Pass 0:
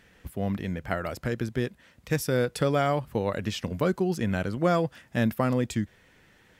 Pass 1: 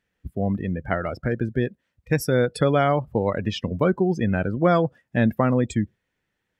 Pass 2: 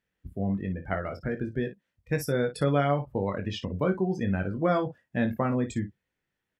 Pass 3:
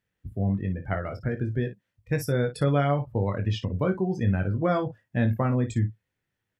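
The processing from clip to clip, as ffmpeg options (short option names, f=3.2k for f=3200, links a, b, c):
-af "afftdn=nr=24:nf=-37,volume=5dB"
-af "aecho=1:1:21|56:0.473|0.237,volume=-7dB"
-af "equalizer=f=110:t=o:w=0.47:g=11.5"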